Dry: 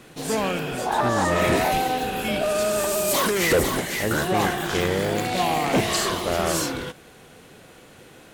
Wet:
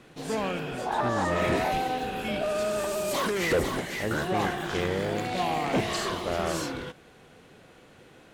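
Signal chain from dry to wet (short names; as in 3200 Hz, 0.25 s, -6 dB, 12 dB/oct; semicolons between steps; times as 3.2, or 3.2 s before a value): high shelf 7600 Hz -12 dB; gain -5 dB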